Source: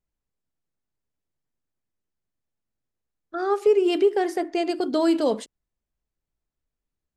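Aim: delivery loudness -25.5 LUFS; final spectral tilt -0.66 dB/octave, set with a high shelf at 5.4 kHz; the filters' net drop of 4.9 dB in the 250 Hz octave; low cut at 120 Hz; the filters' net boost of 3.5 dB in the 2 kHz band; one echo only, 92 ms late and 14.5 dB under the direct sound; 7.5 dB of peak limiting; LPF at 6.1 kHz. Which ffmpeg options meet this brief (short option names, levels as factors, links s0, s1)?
-af "highpass=120,lowpass=6100,equalizer=f=250:t=o:g=-8.5,equalizer=f=2000:t=o:g=6,highshelf=f=5400:g=-8,alimiter=limit=0.106:level=0:latency=1,aecho=1:1:92:0.188,volume=1.5"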